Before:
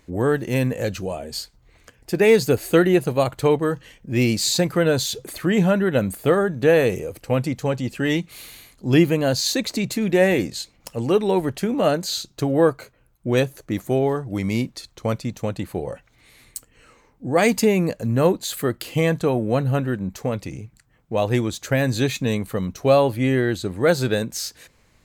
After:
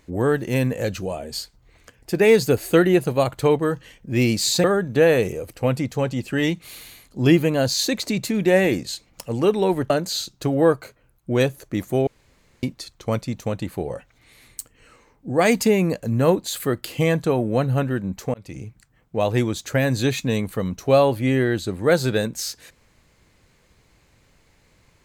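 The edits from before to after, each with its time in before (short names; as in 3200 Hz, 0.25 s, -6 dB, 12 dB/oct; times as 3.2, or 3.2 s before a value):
4.64–6.31 cut
11.57–11.87 cut
14.04–14.6 room tone
20.31–20.58 fade in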